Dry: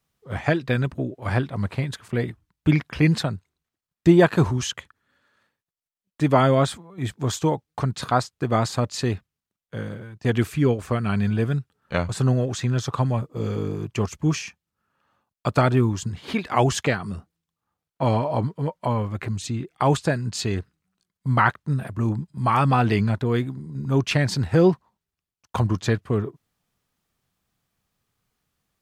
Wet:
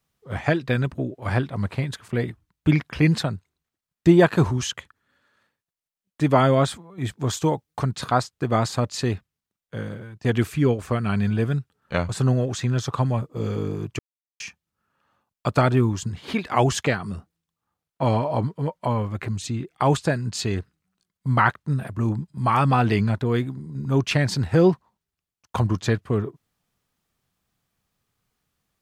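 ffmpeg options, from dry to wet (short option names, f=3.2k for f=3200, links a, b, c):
-filter_complex "[0:a]asettb=1/sr,asplit=3[a][b][c];[a]atrim=end=7.374[d];[b]atrim=start=7.37:end=7.86,asetpts=PTS-STARTPTS,afade=t=in:d=0.004:c=qsin,afade=t=out:st=0.486:d=0.004:c=qsin,highshelf=f=7.7k:g=5.5[e];[c]atrim=start=7.856[f];[d][e]acrossfade=d=0.004:c1=hsin:c2=qsin[g];[g][f]acrossfade=d=0.004:c1=qsin:c2=hsin,asplit=3[h][i][j];[h]atrim=end=13.99,asetpts=PTS-STARTPTS,afade=t=out:st=13.986:d=0.004:c=hsin[k];[i]atrim=start=13.99:end=14.4,asetpts=PTS-STARTPTS,volume=0[l];[j]atrim=start=14.4,asetpts=PTS-STARTPTS,afade=t=in:d=0.004:c=hsin[m];[k][l][m]concat=n=3:v=0:a=1"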